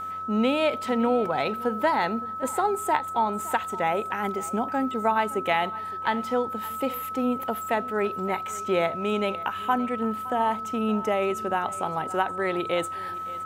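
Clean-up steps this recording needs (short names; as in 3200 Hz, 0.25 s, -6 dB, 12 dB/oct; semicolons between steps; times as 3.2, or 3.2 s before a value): de-hum 92.9 Hz, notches 17; notch 1300 Hz, Q 30; inverse comb 0.565 s -19 dB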